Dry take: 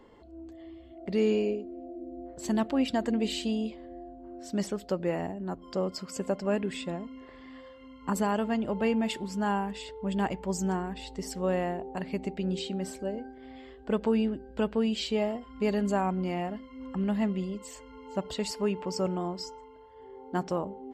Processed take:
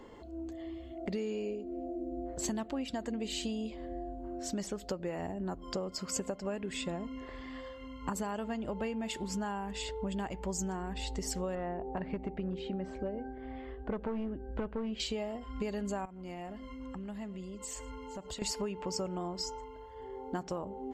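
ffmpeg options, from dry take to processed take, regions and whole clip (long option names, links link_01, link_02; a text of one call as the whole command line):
ffmpeg -i in.wav -filter_complex "[0:a]asettb=1/sr,asplit=3[link_01][link_02][link_03];[link_01]atrim=end=11.554[link_04];[link_02]atrim=start=11.55:end=15,asetpts=PTS-STARTPTS,afade=type=in:duration=0.004:curve=qsin,afade=type=out:start_time=3.446:duration=0.004:curve=qsin,volume=24dB,asoftclip=hard,volume=-24dB,lowpass=1900[link_05];[link_03]atrim=start=14.996[link_06];[link_04][link_05]acrossfade=duration=0.004:curve1=hsin:curve2=qsin[link_07];[link_07][link_06]acrossfade=duration=0.004:curve1=qsin:curve2=hsin,asettb=1/sr,asplit=3[link_08][link_09][link_10];[link_08]atrim=end=16.054[link_11];[link_09]atrim=start=16.05:end=18.42,asetpts=PTS-STARTPTS,afade=type=in:duration=0.004:curve=qsin,afade=type=out:start_time=2.366:duration=0.004:curve=qsin,equalizer=frequency=9200:width=1.4:gain=5,acompressor=threshold=-45dB:ratio=4:attack=3.2:release=140:knee=1:detection=peak,aecho=1:1:111:0.0841,atrim=end_sample=104517[link_12];[link_10]atrim=start=18.416[link_13];[link_11][link_12]acrossfade=duration=0.004:curve1=hsin:curve2=qsin[link_14];[link_14][link_13]acrossfade=duration=0.004:curve1=qsin:curve2=hsin,asubboost=boost=2.5:cutoff=93,acompressor=threshold=-37dB:ratio=10,equalizer=frequency=6700:width=3.7:gain=6,volume=4dB" out.wav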